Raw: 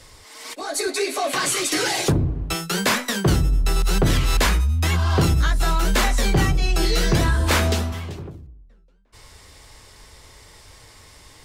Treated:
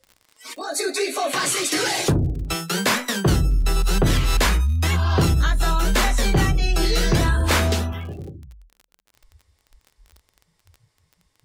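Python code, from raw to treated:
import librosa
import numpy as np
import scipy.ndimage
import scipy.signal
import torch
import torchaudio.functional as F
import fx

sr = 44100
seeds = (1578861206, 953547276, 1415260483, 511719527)

y = fx.noise_reduce_blind(x, sr, reduce_db=23)
y = fx.dmg_crackle(y, sr, seeds[0], per_s=fx.steps((0.0, 70.0), (8.27, 20.0)), level_db=-35.0)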